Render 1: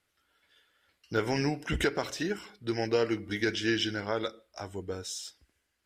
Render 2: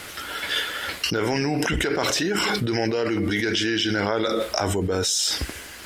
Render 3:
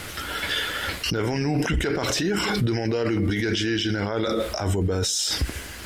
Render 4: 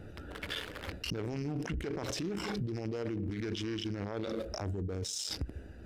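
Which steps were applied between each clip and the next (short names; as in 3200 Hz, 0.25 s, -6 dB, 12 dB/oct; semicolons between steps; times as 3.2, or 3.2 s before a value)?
low shelf 110 Hz -7 dB; fast leveller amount 100%
low shelf 180 Hz +11.5 dB; limiter -16.5 dBFS, peak gain reduction 10 dB; gain +1 dB
Wiener smoothing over 41 samples; compressor, threshold -26 dBFS, peak gain reduction 7 dB; gain -6.5 dB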